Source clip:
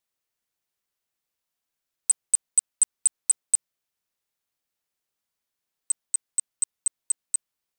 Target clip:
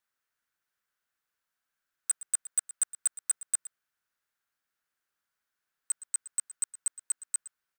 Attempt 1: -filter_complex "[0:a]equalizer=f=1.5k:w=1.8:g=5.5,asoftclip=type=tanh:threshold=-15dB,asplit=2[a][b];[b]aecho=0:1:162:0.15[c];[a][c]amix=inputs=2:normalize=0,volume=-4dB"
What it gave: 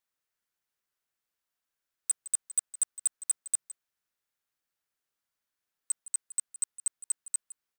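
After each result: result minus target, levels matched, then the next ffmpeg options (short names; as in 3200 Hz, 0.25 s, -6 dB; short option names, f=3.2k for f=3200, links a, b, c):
echo 46 ms late; 2000 Hz band -6.0 dB
-filter_complex "[0:a]equalizer=f=1.5k:w=1.8:g=5.5,asoftclip=type=tanh:threshold=-15dB,asplit=2[a][b];[b]aecho=0:1:116:0.15[c];[a][c]amix=inputs=2:normalize=0,volume=-4dB"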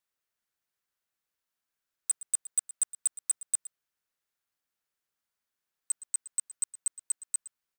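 2000 Hz band -6.0 dB
-filter_complex "[0:a]equalizer=f=1.5k:w=1.8:g=13.5,asoftclip=type=tanh:threshold=-15dB,asplit=2[a][b];[b]aecho=0:1:116:0.15[c];[a][c]amix=inputs=2:normalize=0,volume=-4dB"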